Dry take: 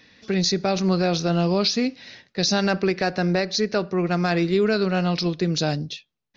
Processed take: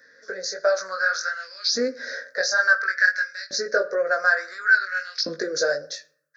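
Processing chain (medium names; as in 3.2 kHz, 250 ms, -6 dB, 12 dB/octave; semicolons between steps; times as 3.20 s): compression 10:1, threshold -28 dBFS, peak gain reduction 12 dB; FFT filter 120 Hz 0 dB, 190 Hz -15 dB, 360 Hz -13 dB, 540 Hz +8 dB, 850 Hz -18 dB, 1.6 kHz +15 dB, 2.8 kHz -27 dB, 4.7 kHz 0 dB, 9.4 kHz +6 dB; LFO high-pass saw up 0.57 Hz 250–3600 Hz; level rider gain up to 11 dB; chorus 1.5 Hz, delay 18.5 ms, depth 3.3 ms; on a send: reverberation RT60 0.55 s, pre-delay 5 ms, DRR 14 dB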